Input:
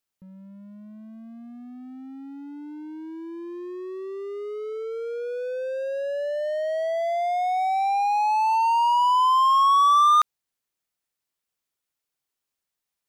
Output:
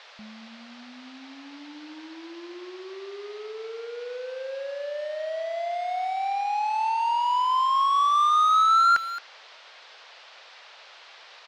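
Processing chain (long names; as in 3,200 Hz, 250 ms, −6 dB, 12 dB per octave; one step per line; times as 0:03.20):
reverb reduction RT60 1.9 s
noise in a band 450–4,200 Hz −50 dBFS
change of speed 1.14×
high-frequency loss of the air 66 metres
far-end echo of a speakerphone 220 ms, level −9 dB
level +1.5 dB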